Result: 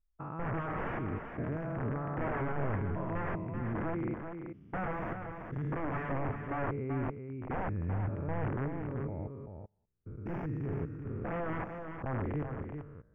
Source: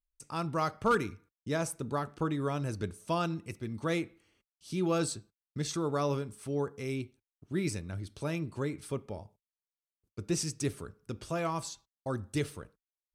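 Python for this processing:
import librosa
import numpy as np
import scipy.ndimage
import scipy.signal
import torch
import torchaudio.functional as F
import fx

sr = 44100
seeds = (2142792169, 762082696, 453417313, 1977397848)

p1 = fx.spec_steps(x, sr, hold_ms=200)
p2 = fx.low_shelf(p1, sr, hz=61.0, db=5.5)
p3 = (np.mod(10.0 ** (30.5 / 20.0) * p2 + 1.0, 2.0) - 1.0) / 10.0 ** (30.5 / 20.0)
p4 = scipy.signal.sosfilt(scipy.signal.cheby2(4, 40, 3800.0, 'lowpass', fs=sr, output='sos'), p3)
p5 = fx.low_shelf(p4, sr, hz=380.0, db=5.5)
y = p5 + fx.echo_single(p5, sr, ms=385, db=-7.0, dry=0)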